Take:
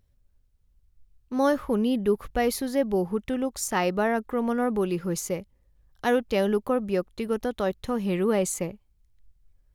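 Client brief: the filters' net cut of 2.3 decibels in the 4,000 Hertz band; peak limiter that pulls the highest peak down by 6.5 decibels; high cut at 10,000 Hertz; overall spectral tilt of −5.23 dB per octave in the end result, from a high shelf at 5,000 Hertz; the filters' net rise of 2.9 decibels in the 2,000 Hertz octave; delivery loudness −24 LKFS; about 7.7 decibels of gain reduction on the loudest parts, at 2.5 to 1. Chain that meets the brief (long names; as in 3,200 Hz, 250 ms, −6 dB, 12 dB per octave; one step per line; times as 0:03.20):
low-pass filter 10,000 Hz
parametric band 2,000 Hz +5 dB
parametric band 4,000 Hz −3.5 dB
high-shelf EQ 5,000 Hz −5 dB
downward compressor 2.5 to 1, threshold −30 dBFS
level +11 dB
brickwall limiter −13.5 dBFS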